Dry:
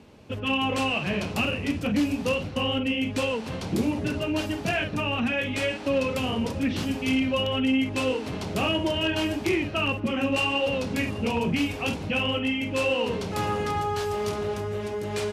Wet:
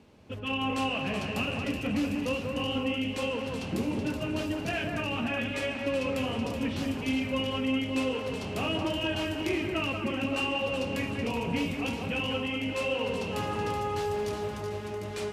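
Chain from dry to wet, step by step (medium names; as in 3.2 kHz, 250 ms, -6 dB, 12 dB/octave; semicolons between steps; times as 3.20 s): echo whose repeats swap between lows and highs 188 ms, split 2.4 kHz, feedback 71%, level -4 dB; trim -6 dB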